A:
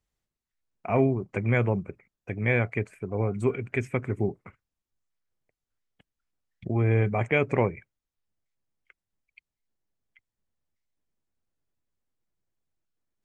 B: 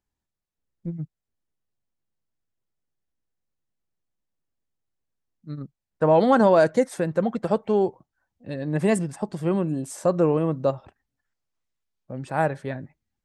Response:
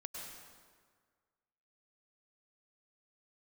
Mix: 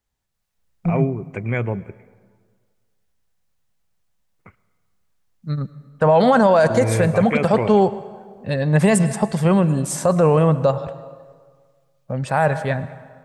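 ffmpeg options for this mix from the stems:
-filter_complex "[0:a]volume=0dB,asplit=3[link_01][link_02][link_03];[link_01]atrim=end=2.12,asetpts=PTS-STARTPTS,afade=type=out:start_time=2.116:duration=0.004:curve=hsin[link_04];[link_02]atrim=start=2.12:end=4.39,asetpts=PTS-STARTPTS,volume=0[link_05];[link_03]atrim=start=4.39,asetpts=PTS-STARTPTS,afade=type=in:duration=0.004:curve=hsin[link_06];[link_04][link_05][link_06]concat=n=3:v=0:a=1,asplit=2[link_07][link_08];[link_08]volume=-14.5dB[link_09];[1:a]equalizer=frequency=320:width=2.3:gain=-13,dynaudnorm=framelen=210:gausssize=3:maxgain=9.5dB,volume=2dB,asplit=2[link_10][link_11];[link_11]volume=-10.5dB[link_12];[2:a]atrim=start_sample=2205[link_13];[link_09][link_12]amix=inputs=2:normalize=0[link_14];[link_14][link_13]afir=irnorm=-1:irlink=0[link_15];[link_07][link_10][link_15]amix=inputs=3:normalize=0,alimiter=limit=-7dB:level=0:latency=1:release=16"

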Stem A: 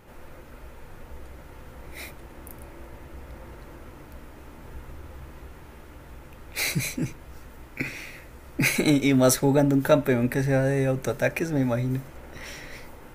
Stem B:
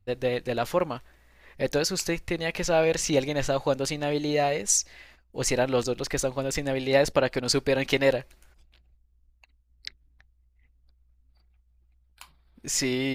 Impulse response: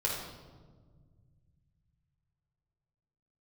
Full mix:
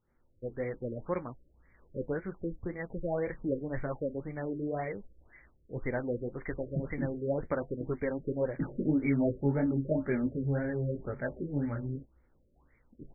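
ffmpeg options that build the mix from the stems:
-filter_complex "[0:a]flanger=delay=18:depth=3.2:speed=2.9,agate=range=-19dB:threshold=-37dB:ratio=16:detection=peak,volume=-3.5dB[link_01];[1:a]flanger=delay=7.9:depth=3.8:regen=-58:speed=2:shape=triangular,adelay=350,volume=-1dB[link_02];[link_01][link_02]amix=inputs=2:normalize=0,equalizer=frequency=720:width_type=o:width=1.3:gain=-7,afftfilt=real='re*lt(b*sr/1024,590*pow(2400/590,0.5+0.5*sin(2*PI*1.9*pts/sr)))':imag='im*lt(b*sr/1024,590*pow(2400/590,0.5+0.5*sin(2*PI*1.9*pts/sr)))':win_size=1024:overlap=0.75"

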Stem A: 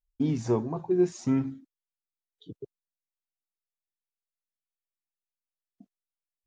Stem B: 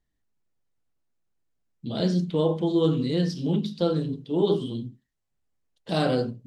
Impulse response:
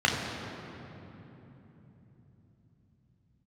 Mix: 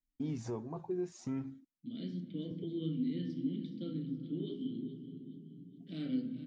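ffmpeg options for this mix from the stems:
-filter_complex "[0:a]alimiter=limit=-21.5dB:level=0:latency=1:release=284,volume=-7.5dB[link_01];[1:a]asplit=3[link_02][link_03][link_04];[link_02]bandpass=frequency=270:width_type=q:width=8,volume=0dB[link_05];[link_03]bandpass=frequency=2290:width_type=q:width=8,volume=-6dB[link_06];[link_04]bandpass=frequency=3010:width_type=q:width=8,volume=-9dB[link_07];[link_05][link_06][link_07]amix=inputs=3:normalize=0,equalizer=frequency=140:width=2.3:gain=10.5,volume=-5.5dB,asplit=3[link_08][link_09][link_10];[link_09]volume=-23dB[link_11];[link_10]volume=-14.5dB[link_12];[2:a]atrim=start_sample=2205[link_13];[link_11][link_13]afir=irnorm=-1:irlink=0[link_14];[link_12]aecho=0:1:421|842|1263|1684|2105|2526:1|0.44|0.194|0.0852|0.0375|0.0165[link_15];[link_01][link_08][link_14][link_15]amix=inputs=4:normalize=0"

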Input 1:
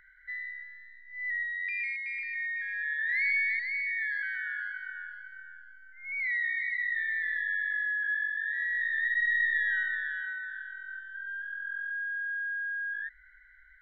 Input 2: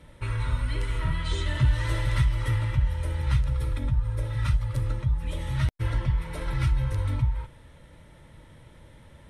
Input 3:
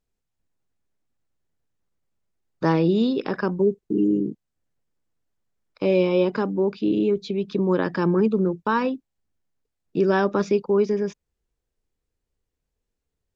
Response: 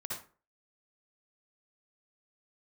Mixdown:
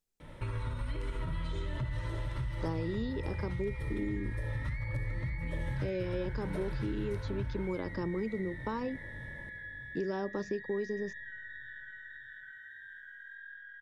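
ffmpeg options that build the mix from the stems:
-filter_complex "[0:a]adelay=1550,volume=-7dB,asplit=2[link_01][link_02];[link_02]volume=-4.5dB[link_03];[1:a]highshelf=frequency=4400:gain=-8.5,alimiter=level_in=0.5dB:limit=-24dB:level=0:latency=1:release=99,volume=-0.5dB,adelay=200,volume=1dB,asplit=3[link_04][link_05][link_06];[link_05]volume=-7.5dB[link_07];[link_06]volume=-10dB[link_08];[2:a]highshelf=frequency=4300:gain=11,volume=-8dB[link_09];[3:a]atrim=start_sample=2205[link_10];[link_07][link_10]afir=irnorm=-1:irlink=0[link_11];[link_03][link_08]amix=inputs=2:normalize=0,aecho=0:1:603|1206|1809|2412|3015|3618|4221|4824|5427:1|0.58|0.336|0.195|0.113|0.0656|0.0381|0.0221|0.0128[link_12];[link_01][link_04][link_09][link_11][link_12]amix=inputs=5:normalize=0,equalizer=frequency=63:width_type=o:width=1.3:gain=-6.5,acrossover=split=1000|3100[link_13][link_14][link_15];[link_13]acompressor=threshold=-32dB:ratio=4[link_16];[link_14]acompressor=threshold=-54dB:ratio=4[link_17];[link_15]acompressor=threshold=-58dB:ratio=4[link_18];[link_16][link_17][link_18]amix=inputs=3:normalize=0"

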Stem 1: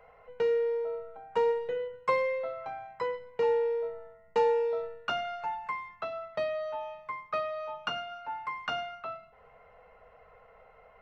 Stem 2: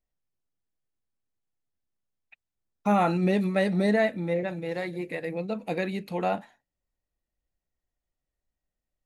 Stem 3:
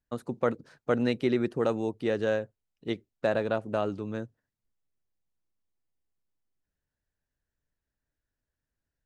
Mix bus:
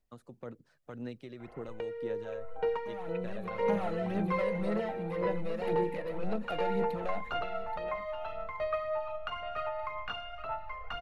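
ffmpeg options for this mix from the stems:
ffmpeg -i stem1.wav -i stem2.wav -i stem3.wav -filter_complex "[0:a]lowpass=3700,asubboost=boost=9.5:cutoff=62,adelay=1400,volume=1.5dB,asplit=2[link_01][link_02];[link_02]volume=-7.5dB[link_03];[1:a]acrossover=split=1300|2800[link_04][link_05][link_06];[link_04]acompressor=threshold=-30dB:ratio=4[link_07];[link_05]acompressor=threshold=-50dB:ratio=4[link_08];[link_06]acompressor=threshold=-58dB:ratio=4[link_09];[link_07][link_08][link_09]amix=inputs=3:normalize=0,asoftclip=type=tanh:threshold=-30dB,volume=1dB,asplit=2[link_10][link_11];[link_11]volume=-3dB[link_12];[2:a]acrossover=split=130[link_13][link_14];[link_14]acompressor=threshold=-29dB:ratio=2.5[link_15];[link_13][link_15]amix=inputs=2:normalize=0,volume=-14dB[link_16];[link_01][link_10]amix=inputs=2:normalize=0,acompressor=threshold=-38dB:ratio=6,volume=0dB[link_17];[link_03][link_12]amix=inputs=2:normalize=0,aecho=0:1:826|1652|2478:1|0.2|0.04[link_18];[link_16][link_17][link_18]amix=inputs=3:normalize=0,aphaser=in_gain=1:out_gain=1:delay=1.8:decay=0.41:speed=1.9:type=sinusoidal" out.wav

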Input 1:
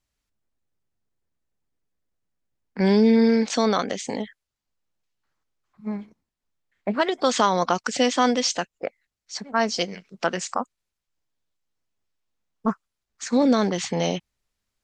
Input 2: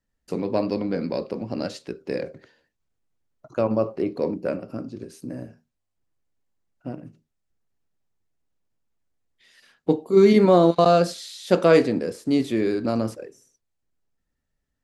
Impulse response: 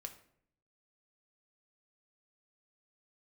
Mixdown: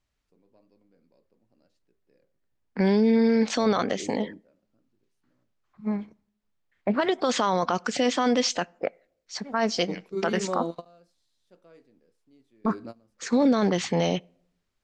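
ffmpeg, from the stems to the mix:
-filter_complex "[0:a]highshelf=frequency=6800:gain=-12,volume=1dB,asplit=3[link_01][link_02][link_03];[link_02]volume=-15.5dB[link_04];[1:a]volume=-15dB[link_05];[link_03]apad=whole_len=654210[link_06];[link_05][link_06]sidechaingate=range=-24dB:threshold=-46dB:ratio=16:detection=peak[link_07];[2:a]atrim=start_sample=2205[link_08];[link_04][link_08]afir=irnorm=-1:irlink=0[link_09];[link_01][link_07][link_09]amix=inputs=3:normalize=0,alimiter=limit=-13dB:level=0:latency=1:release=12"

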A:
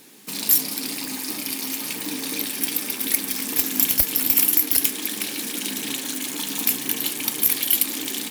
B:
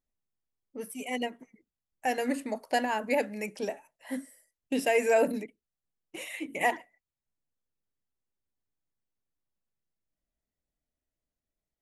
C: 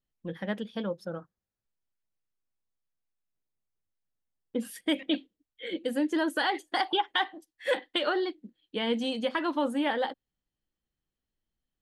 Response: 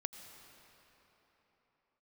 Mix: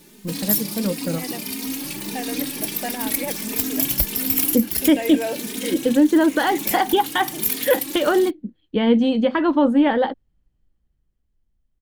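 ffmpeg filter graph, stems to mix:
-filter_complex "[0:a]lowshelf=frequency=300:gain=11.5,asplit=2[link_01][link_02];[link_02]adelay=3,afreqshift=1.5[link_03];[link_01][link_03]amix=inputs=2:normalize=1,volume=0.5dB[link_04];[1:a]adelay=100,volume=-3dB[link_05];[2:a]aemphasis=mode=reproduction:type=riaa,dynaudnorm=framelen=130:gausssize=17:maxgain=7dB,volume=1dB,asplit=2[link_06][link_07];[link_07]apad=whole_len=366367[link_08];[link_04][link_08]sidechaincompress=threshold=-18dB:ratio=8:attack=5.4:release=418[link_09];[link_09][link_05][link_06]amix=inputs=3:normalize=0"

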